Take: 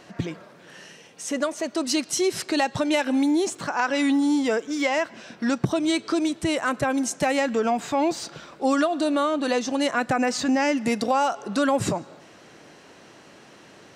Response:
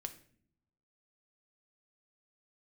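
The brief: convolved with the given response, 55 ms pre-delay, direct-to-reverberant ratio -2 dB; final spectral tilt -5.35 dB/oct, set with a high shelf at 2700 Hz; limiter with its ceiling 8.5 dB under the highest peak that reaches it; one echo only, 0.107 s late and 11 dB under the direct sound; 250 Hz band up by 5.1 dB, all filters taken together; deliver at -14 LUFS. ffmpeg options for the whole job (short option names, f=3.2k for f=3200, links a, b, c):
-filter_complex "[0:a]equalizer=f=250:t=o:g=6,highshelf=f=2.7k:g=-5.5,alimiter=limit=-15dB:level=0:latency=1,aecho=1:1:107:0.282,asplit=2[a][b];[1:a]atrim=start_sample=2205,adelay=55[c];[b][c]afir=irnorm=-1:irlink=0,volume=5dB[d];[a][d]amix=inputs=2:normalize=0,volume=4dB"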